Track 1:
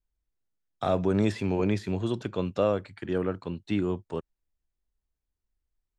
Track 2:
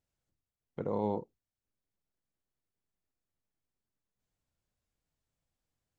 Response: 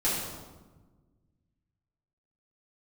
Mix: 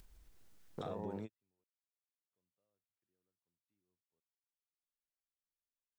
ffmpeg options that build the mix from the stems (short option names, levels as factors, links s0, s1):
-filter_complex "[0:a]acompressor=mode=upward:threshold=0.0282:ratio=2.5,alimiter=limit=0.112:level=0:latency=1:release=132,volume=0.398,asplit=3[s0][s1][s2];[s0]atrim=end=1.64,asetpts=PTS-STARTPTS,afade=t=out:st=1.636:d=0.004:c=hsin[s3];[s1]atrim=start=1.64:end=2.31,asetpts=PTS-STARTPTS,volume=0[s4];[s2]atrim=start=2.31,asetpts=PTS-STARTPTS,afade=t=in:d=0.004:c=hsin[s5];[s3][s4][s5]concat=n=3:v=0:a=1[s6];[1:a]afwtdn=0.00562,aeval=exprs='val(0)*gte(abs(val(0)),0.00211)':c=same,volume=0.631,asplit=2[s7][s8];[s8]apad=whole_len=263805[s9];[s6][s9]sidechaingate=range=0.00251:threshold=0.00562:ratio=16:detection=peak[s10];[s10][s7]amix=inputs=2:normalize=0,acompressor=threshold=0.01:ratio=4"